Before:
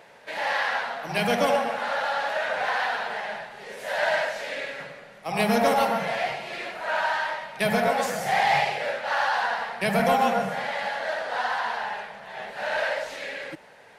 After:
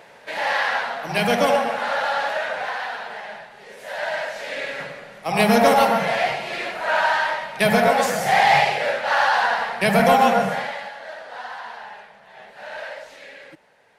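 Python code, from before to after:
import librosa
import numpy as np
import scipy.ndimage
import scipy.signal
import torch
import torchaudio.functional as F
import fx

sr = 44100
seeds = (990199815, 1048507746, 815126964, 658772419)

y = fx.gain(x, sr, db=fx.line((2.24, 4.0), (2.79, -2.5), (4.13, -2.5), (4.78, 6.0), (10.53, 6.0), (10.93, -7.0)))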